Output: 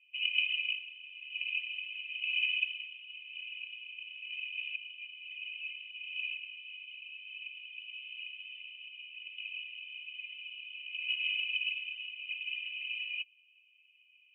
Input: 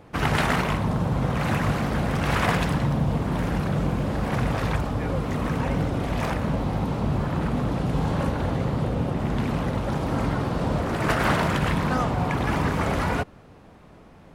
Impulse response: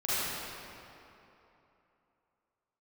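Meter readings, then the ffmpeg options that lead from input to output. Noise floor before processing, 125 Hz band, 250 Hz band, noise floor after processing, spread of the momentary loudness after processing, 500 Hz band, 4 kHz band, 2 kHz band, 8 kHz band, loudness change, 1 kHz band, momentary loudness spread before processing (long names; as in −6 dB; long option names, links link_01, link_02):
−49 dBFS, below −40 dB, below −40 dB, −65 dBFS, 14 LU, below −40 dB, +1.5 dB, −4.5 dB, below −40 dB, −11.5 dB, below −40 dB, 4 LU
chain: -af "asuperpass=centerf=2700:order=8:qfactor=4.5,acontrast=30,afftfilt=real='re*eq(mod(floor(b*sr/1024/240),2),0)':imag='im*eq(mod(floor(b*sr/1024/240),2),0)':win_size=1024:overlap=0.75,volume=3.5dB"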